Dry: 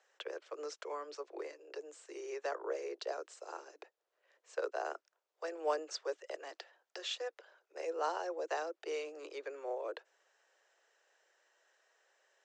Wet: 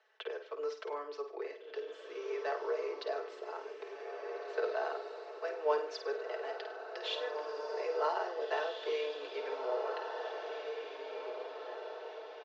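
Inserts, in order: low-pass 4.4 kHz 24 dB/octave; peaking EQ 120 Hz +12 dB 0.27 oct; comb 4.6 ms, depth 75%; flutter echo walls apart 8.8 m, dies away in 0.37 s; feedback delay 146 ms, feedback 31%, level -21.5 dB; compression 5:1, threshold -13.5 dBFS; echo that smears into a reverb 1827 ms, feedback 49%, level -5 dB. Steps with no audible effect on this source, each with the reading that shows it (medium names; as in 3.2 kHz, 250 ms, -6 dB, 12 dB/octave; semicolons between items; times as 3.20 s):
peaking EQ 120 Hz: input has nothing below 270 Hz; compression, threshold -13.5 dBFS: peak at its input -18.5 dBFS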